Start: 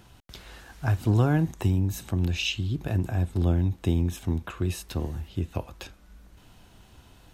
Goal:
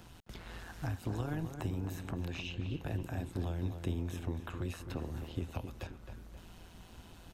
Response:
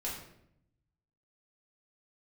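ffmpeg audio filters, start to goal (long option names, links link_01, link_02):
-filter_complex "[0:a]acrossover=split=410|2400[link_01][link_02][link_03];[link_01]acompressor=threshold=-37dB:ratio=4[link_04];[link_02]acompressor=threshold=-45dB:ratio=4[link_05];[link_03]acompressor=threshold=-55dB:ratio=4[link_06];[link_04][link_05][link_06]amix=inputs=3:normalize=0,tremolo=f=170:d=0.667,asplit=2[link_07][link_08];[link_08]adelay=264,lowpass=frequency=2500:poles=1,volume=-8dB,asplit=2[link_09][link_10];[link_10]adelay=264,lowpass=frequency=2500:poles=1,volume=0.49,asplit=2[link_11][link_12];[link_12]adelay=264,lowpass=frequency=2500:poles=1,volume=0.49,asplit=2[link_13][link_14];[link_14]adelay=264,lowpass=frequency=2500:poles=1,volume=0.49,asplit=2[link_15][link_16];[link_16]adelay=264,lowpass=frequency=2500:poles=1,volume=0.49,asplit=2[link_17][link_18];[link_18]adelay=264,lowpass=frequency=2500:poles=1,volume=0.49[link_19];[link_07][link_09][link_11][link_13][link_15][link_17][link_19]amix=inputs=7:normalize=0,volume=2dB"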